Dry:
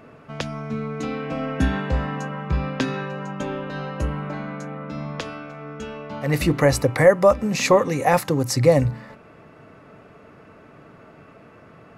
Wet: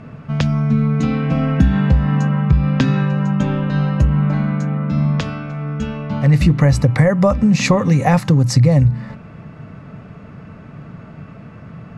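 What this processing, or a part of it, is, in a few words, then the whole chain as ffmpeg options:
jukebox: -af "lowpass=7600,lowshelf=frequency=250:width_type=q:width=1.5:gain=10,acompressor=threshold=-15dB:ratio=4,volume=5dB"

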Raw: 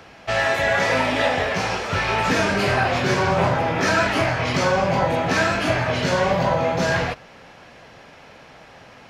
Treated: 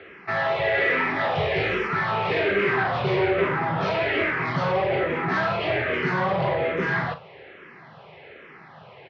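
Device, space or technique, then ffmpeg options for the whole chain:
barber-pole phaser into a guitar amplifier: -filter_complex "[0:a]lowpass=9700,asplit=2[link_01][link_02];[link_02]afreqshift=-1.2[link_03];[link_01][link_03]amix=inputs=2:normalize=1,asoftclip=type=tanh:threshold=-20dB,highpass=100,equalizer=frequency=150:width_type=q:width=4:gain=6,equalizer=frequency=260:width_type=q:width=4:gain=-5,equalizer=frequency=390:width_type=q:width=4:gain=10,equalizer=frequency=1200:width_type=q:width=4:gain=3,equalizer=frequency=2000:width_type=q:width=4:gain=6,lowpass=frequency=3600:width=0.5412,lowpass=frequency=3600:width=1.3066,asettb=1/sr,asplit=3[link_04][link_05][link_06];[link_04]atrim=end=1.354[link_07];[link_05]atrim=start=1.35:end=1.88,asetpts=PTS-STARTPTS,afade=type=in:duration=0.004:curve=qsin,afade=type=out:start_time=0.526:duration=0.004:curve=qsin,bass=frequency=250:gain=7,treble=frequency=4000:gain=7[link_08];[link_06]atrim=start=1.876[link_09];[link_07][link_08]acrossfade=duration=0.004:curve1=hsin:curve2=qsin[link_10];[link_10][link_09]acrossfade=duration=0.004:curve1=qsin:curve2=hsin,aecho=1:1:38|51:0.266|0.133"

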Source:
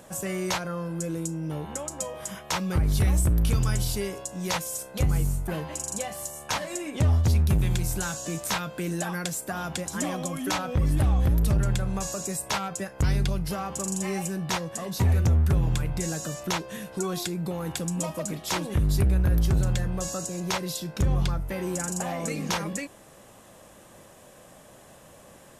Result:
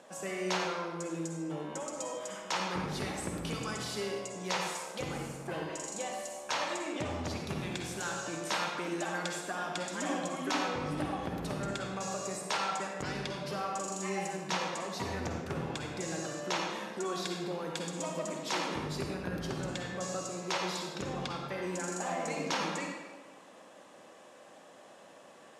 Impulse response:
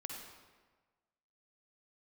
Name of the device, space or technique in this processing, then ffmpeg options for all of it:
supermarket ceiling speaker: -filter_complex "[0:a]highpass=290,lowpass=6000[link_01];[1:a]atrim=start_sample=2205[link_02];[link_01][link_02]afir=irnorm=-1:irlink=0"

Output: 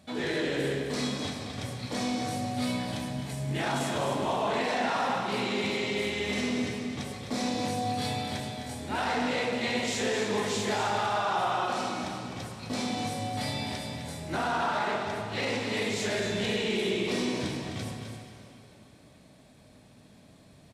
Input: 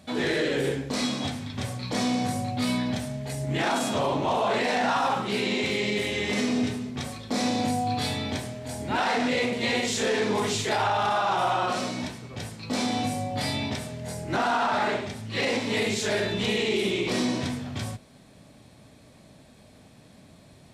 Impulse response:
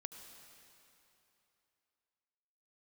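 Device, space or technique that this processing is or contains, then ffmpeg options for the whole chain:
cave: -filter_complex "[0:a]aecho=1:1:257:0.376[link_01];[1:a]atrim=start_sample=2205[link_02];[link_01][link_02]afir=irnorm=-1:irlink=0"

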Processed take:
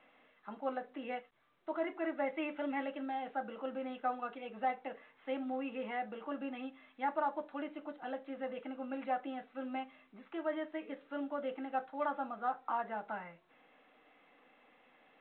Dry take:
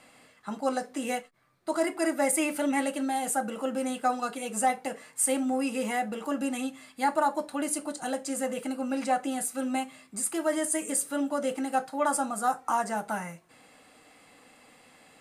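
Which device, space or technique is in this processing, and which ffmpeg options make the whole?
telephone: -af "highpass=260,lowpass=3000,volume=-8.5dB" -ar 8000 -c:a pcm_mulaw

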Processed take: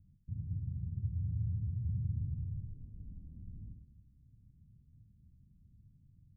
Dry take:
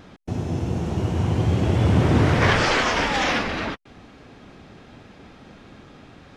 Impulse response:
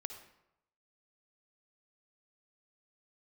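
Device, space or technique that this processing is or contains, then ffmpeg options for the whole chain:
club heard from the street: -filter_complex "[0:a]alimiter=limit=-15.5dB:level=0:latency=1:release=190,lowpass=frequency=140:width=0.5412,lowpass=frequency=140:width=1.3066[link_01];[1:a]atrim=start_sample=2205[link_02];[link_01][link_02]afir=irnorm=-1:irlink=0,volume=-7dB"

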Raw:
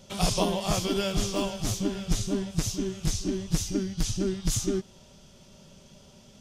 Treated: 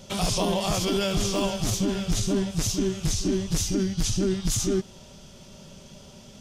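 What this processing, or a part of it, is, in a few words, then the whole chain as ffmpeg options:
clipper into limiter: -af "asoftclip=type=hard:threshold=-15.5dB,alimiter=limit=-22.5dB:level=0:latency=1:release=17,volume=6dB"

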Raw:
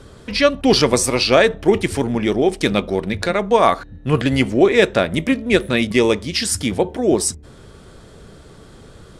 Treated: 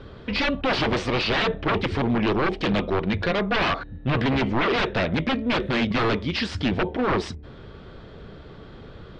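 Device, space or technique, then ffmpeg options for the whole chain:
synthesiser wavefolder: -af "aeval=exprs='0.15*(abs(mod(val(0)/0.15+3,4)-2)-1)':channel_layout=same,lowpass=frequency=3900:width=0.5412,lowpass=frequency=3900:width=1.3066"

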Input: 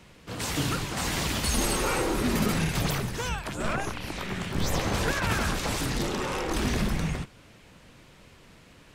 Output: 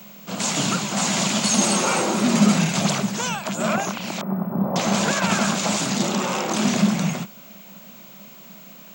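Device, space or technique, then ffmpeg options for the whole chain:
old television with a line whistle: -filter_complex "[0:a]asettb=1/sr,asplit=3[link_01][link_02][link_03];[link_01]atrim=end=4.214[link_04];[link_02]atrim=start=4.21:end=4.76,asetpts=PTS-STARTPTS,afade=type=in:duration=0.004:curve=qsin,afade=type=out:start_time=0.546:duration=0.004:curve=qsin,lowpass=frequency=1100:width=0.5412,lowpass=frequency=1100:width=1.3066[link_05];[link_03]atrim=start=4.756[link_06];[link_04][link_05]acrossfade=duration=0.004:curve1=hsin:curve2=qsin[link_07];[link_07][link_06]acrossfade=duration=0.004:curve1=qsin:curve2=hsin,highpass=frequency=170:width=0.5412,highpass=frequency=170:width=1.3066,equalizer=frequency=200:width_type=q:width=4:gain=10,equalizer=frequency=300:width_type=q:width=4:gain=-7,equalizer=frequency=450:width_type=q:width=4:gain=-7,equalizer=frequency=640:width_type=q:width=4:gain=5,equalizer=frequency=1800:width_type=q:width=4:gain=-6,equalizer=frequency=7000:width_type=q:width=4:gain=9,lowpass=frequency=8100:width=0.5412,lowpass=frequency=8100:width=1.3066,aeval=exprs='val(0)+0.00316*sin(2*PI*15734*n/s)':channel_layout=same,volume=7dB"

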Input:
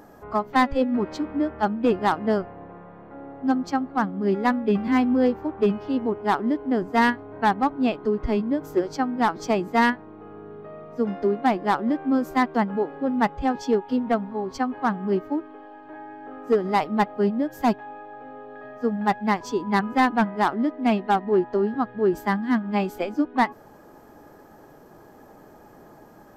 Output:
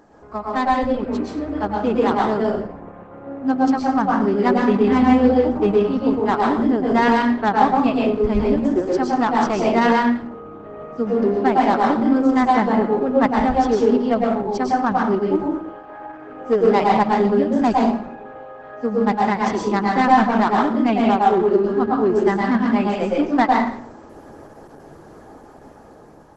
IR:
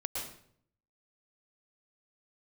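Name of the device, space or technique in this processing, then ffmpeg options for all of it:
speakerphone in a meeting room: -filter_complex "[1:a]atrim=start_sample=2205[link_01];[0:a][link_01]afir=irnorm=-1:irlink=0,dynaudnorm=framelen=840:gausssize=5:maxgain=11dB,volume=-1.5dB" -ar 48000 -c:a libopus -b:a 12k

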